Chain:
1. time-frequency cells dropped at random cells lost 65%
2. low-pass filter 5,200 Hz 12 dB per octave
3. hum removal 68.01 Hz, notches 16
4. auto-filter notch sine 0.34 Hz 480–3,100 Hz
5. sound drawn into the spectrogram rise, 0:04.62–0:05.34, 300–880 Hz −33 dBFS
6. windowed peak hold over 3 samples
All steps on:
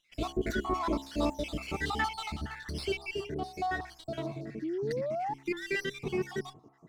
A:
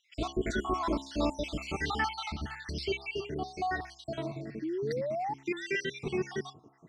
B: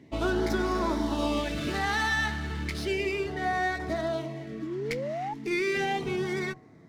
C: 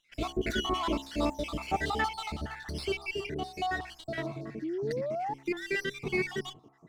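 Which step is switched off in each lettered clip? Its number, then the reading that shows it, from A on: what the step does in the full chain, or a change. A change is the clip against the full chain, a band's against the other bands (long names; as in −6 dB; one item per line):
6, distortion level −19 dB
1, 2 kHz band +2.5 dB
4, 4 kHz band +2.5 dB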